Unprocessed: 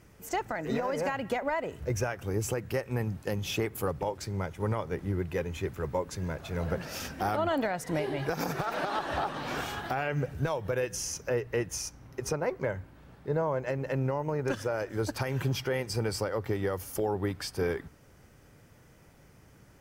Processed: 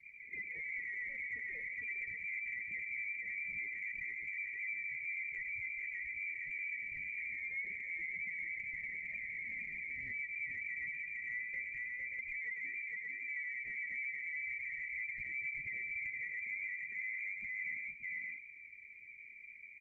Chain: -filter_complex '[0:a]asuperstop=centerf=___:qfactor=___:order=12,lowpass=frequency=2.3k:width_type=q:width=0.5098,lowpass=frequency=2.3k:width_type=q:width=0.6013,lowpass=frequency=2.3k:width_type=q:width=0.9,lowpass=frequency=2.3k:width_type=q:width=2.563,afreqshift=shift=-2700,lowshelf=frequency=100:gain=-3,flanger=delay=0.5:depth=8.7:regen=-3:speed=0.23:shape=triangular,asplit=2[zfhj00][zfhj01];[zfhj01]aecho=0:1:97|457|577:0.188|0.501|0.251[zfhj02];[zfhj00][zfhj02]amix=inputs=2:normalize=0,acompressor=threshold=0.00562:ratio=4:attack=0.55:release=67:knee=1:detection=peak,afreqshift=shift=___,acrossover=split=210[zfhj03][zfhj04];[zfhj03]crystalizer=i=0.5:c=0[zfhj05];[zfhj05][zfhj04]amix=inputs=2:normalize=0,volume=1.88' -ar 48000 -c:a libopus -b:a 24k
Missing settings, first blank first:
1100, 0.56, -250